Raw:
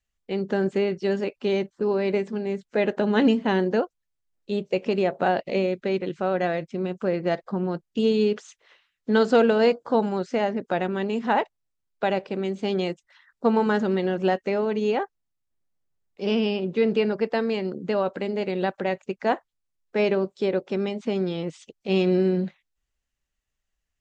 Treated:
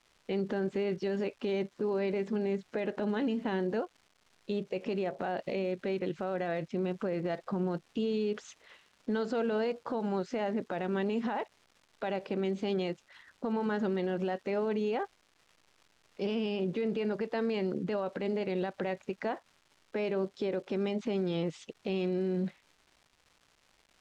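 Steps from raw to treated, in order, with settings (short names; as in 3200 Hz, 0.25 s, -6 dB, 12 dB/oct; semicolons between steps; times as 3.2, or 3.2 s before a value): compressor, threshold -26 dBFS, peak gain reduction 11.5 dB; limiter -25 dBFS, peak gain reduction 10 dB; crackle 470/s -50 dBFS; air absorption 58 m; gain +1 dB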